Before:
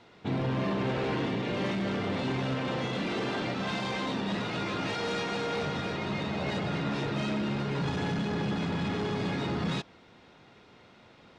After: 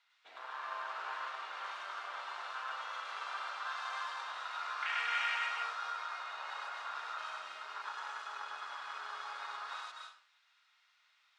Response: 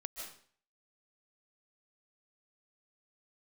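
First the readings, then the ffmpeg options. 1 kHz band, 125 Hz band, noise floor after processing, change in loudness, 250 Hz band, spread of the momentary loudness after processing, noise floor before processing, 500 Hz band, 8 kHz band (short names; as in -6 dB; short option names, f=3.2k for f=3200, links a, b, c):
-3.0 dB, under -40 dB, -72 dBFS, -8.5 dB, under -40 dB, 9 LU, -56 dBFS, -22.5 dB, -7.5 dB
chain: -filter_complex "[0:a]afwtdn=0.0224,highpass=f=1.2k:w=0.5412,highpass=f=1.2k:w=1.3066,asplit=2[a][b];[1:a]atrim=start_sample=2205,highshelf=f=4.2k:g=9.5,adelay=101[c];[b][c]afir=irnorm=-1:irlink=0,volume=-0.5dB[d];[a][d]amix=inputs=2:normalize=0,volume=3dB"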